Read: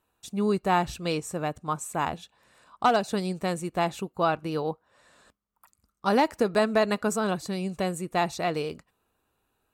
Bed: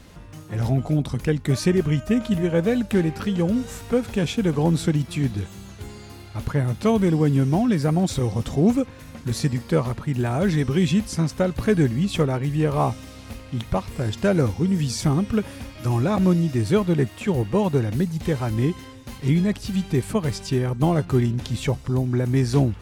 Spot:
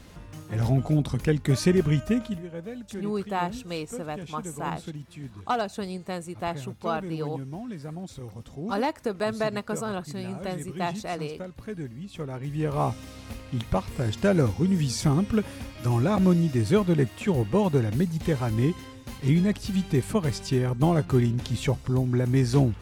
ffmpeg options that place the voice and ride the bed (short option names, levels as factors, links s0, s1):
-filter_complex "[0:a]adelay=2650,volume=0.596[s0];[1:a]volume=4.47,afade=t=out:st=2.02:d=0.41:silence=0.177828,afade=t=in:st=12.14:d=0.96:silence=0.188365[s1];[s0][s1]amix=inputs=2:normalize=0"